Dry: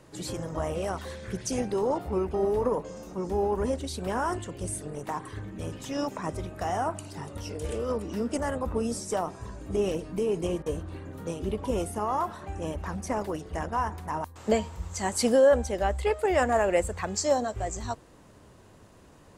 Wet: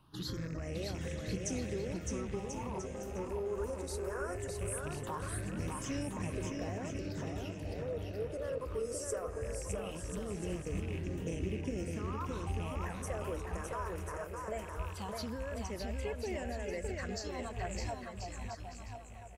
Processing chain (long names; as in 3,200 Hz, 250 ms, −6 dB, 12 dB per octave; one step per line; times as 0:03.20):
loose part that buzzes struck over −36 dBFS, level −33 dBFS
notch filter 2,400 Hz, Q 16
noise gate −46 dBFS, range −9 dB
0:06.32–0:08.58: octave-band graphic EQ 500/1,000/8,000 Hz +11/−6/−10 dB
speech leveller within 5 dB 0.5 s
brickwall limiter −20 dBFS, peak gain reduction 8 dB
downward compressor 2 to 1, threshold −33 dBFS, peak gain reduction 5.5 dB
all-pass phaser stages 6, 0.2 Hz, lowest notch 200–1,200 Hz
bouncing-ball delay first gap 610 ms, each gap 0.7×, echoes 5
level −3.5 dB